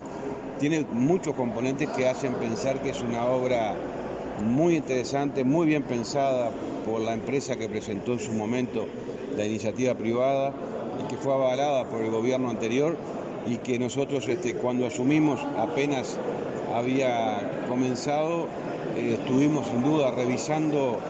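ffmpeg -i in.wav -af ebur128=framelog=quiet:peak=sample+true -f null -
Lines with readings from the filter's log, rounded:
Integrated loudness:
  I:         -27.1 LUFS
  Threshold: -37.1 LUFS
Loudness range:
  LRA:         2.4 LU
  Threshold: -47.2 LUFS
  LRA low:   -28.5 LUFS
  LRA high:  -26.1 LUFS
Sample peak:
  Peak:      -10.6 dBFS
True peak:
  Peak:      -10.6 dBFS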